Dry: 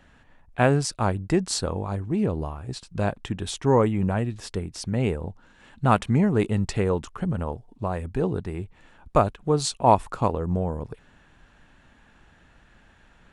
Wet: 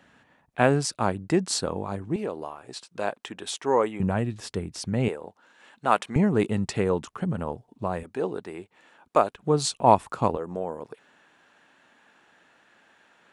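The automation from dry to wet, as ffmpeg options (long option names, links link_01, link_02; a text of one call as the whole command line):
ffmpeg -i in.wav -af "asetnsamples=nb_out_samples=441:pad=0,asendcmd='2.16 highpass f 410;4 highpass f 98;5.08 highpass f 420;6.16 highpass f 130;8.03 highpass f 340;9.35 highpass f 120;10.37 highpass f 340',highpass=150" out.wav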